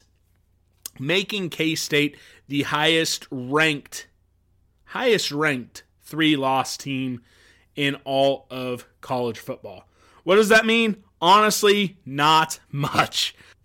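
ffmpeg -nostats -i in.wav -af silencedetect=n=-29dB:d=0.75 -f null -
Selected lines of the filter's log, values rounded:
silence_start: 0.00
silence_end: 0.86 | silence_duration: 0.86
silence_start: 4.00
silence_end: 4.92 | silence_duration: 0.92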